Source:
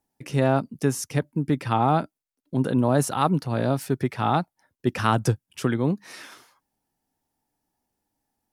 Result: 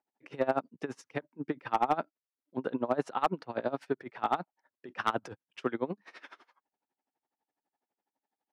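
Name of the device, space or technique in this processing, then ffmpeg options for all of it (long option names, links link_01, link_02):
helicopter radio: -af "highpass=360,lowpass=2600,aeval=exprs='val(0)*pow(10,-22*(0.5-0.5*cos(2*PI*12*n/s))/20)':channel_layout=same,asoftclip=type=hard:threshold=-16.5dB"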